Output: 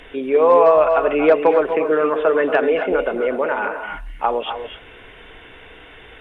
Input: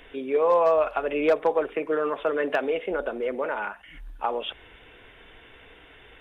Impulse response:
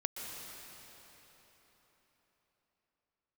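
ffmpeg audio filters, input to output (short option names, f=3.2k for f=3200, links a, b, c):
-filter_complex "[0:a]acrossover=split=3200[a][b];[b]acompressor=threshold=-59dB:ratio=4:attack=1:release=60[c];[a][c]amix=inputs=2:normalize=0[d];[1:a]atrim=start_sample=2205,atrim=end_sample=6174,asetrate=22491,aresample=44100[e];[d][e]afir=irnorm=-1:irlink=0,volume=5.5dB"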